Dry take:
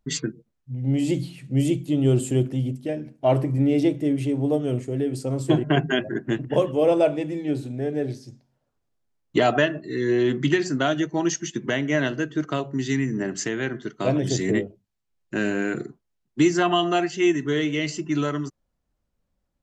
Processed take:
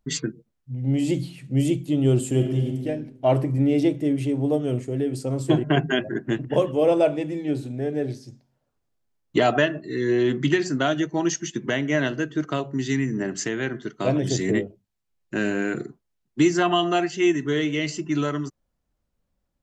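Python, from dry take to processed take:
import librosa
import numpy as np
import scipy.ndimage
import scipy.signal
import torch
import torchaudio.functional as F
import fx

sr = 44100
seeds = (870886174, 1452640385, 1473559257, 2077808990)

y = fx.reverb_throw(x, sr, start_s=2.28, length_s=0.57, rt60_s=1.2, drr_db=3.5)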